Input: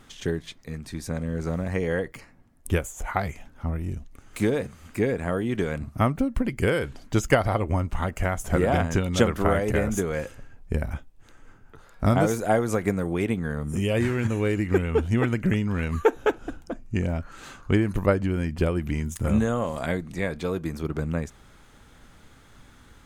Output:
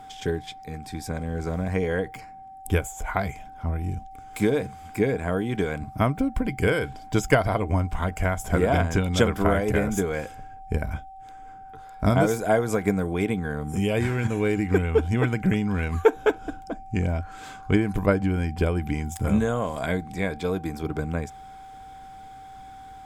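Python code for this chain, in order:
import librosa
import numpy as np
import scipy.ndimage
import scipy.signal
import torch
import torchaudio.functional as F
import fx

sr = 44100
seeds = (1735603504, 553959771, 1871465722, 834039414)

y = fx.ripple_eq(x, sr, per_octave=1.7, db=6)
y = y + 10.0 ** (-41.0 / 20.0) * np.sin(2.0 * np.pi * 770.0 * np.arange(len(y)) / sr)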